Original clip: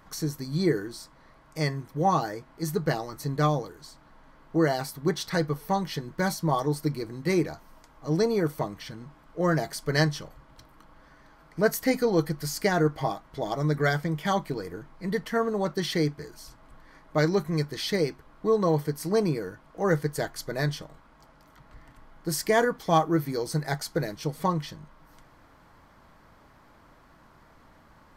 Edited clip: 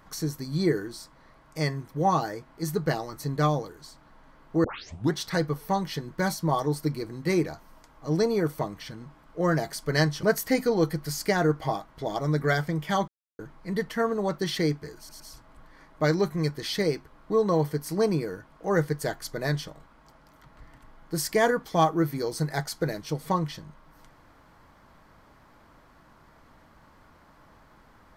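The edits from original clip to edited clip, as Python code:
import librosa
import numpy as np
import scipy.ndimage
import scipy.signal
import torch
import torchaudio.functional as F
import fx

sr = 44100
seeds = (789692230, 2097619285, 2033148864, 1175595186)

y = fx.edit(x, sr, fx.tape_start(start_s=4.64, length_s=0.5),
    fx.cut(start_s=10.23, length_s=1.36),
    fx.silence(start_s=14.44, length_s=0.31),
    fx.stutter(start_s=16.34, slice_s=0.11, count=3), tone=tone)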